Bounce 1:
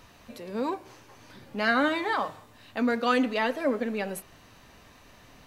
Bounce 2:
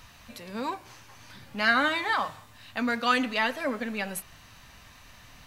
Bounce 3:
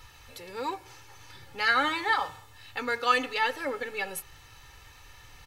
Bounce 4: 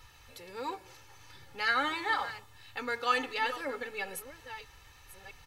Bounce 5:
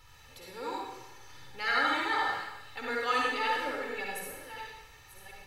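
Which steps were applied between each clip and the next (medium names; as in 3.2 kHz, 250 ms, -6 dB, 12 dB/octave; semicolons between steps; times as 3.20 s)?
peaking EQ 390 Hz -12 dB 1.8 oct; trim +4.5 dB
comb 2.3 ms, depth 90%; trim -3 dB
chunks repeated in reverse 664 ms, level -13 dB; trim -4.5 dB
reverberation RT60 0.95 s, pre-delay 48 ms, DRR -3 dB; trim -3 dB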